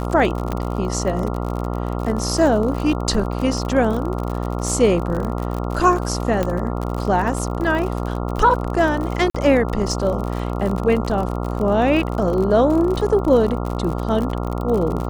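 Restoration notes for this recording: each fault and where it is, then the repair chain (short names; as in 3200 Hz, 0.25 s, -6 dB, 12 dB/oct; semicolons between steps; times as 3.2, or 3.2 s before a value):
buzz 60 Hz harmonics 23 -24 dBFS
crackle 53/s -25 dBFS
0.52 pop -11 dBFS
6.43 pop -9 dBFS
9.3–9.35 gap 45 ms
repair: de-click; de-hum 60 Hz, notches 23; interpolate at 9.3, 45 ms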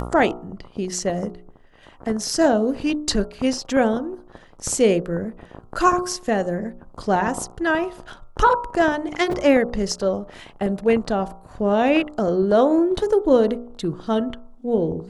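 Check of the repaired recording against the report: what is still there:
none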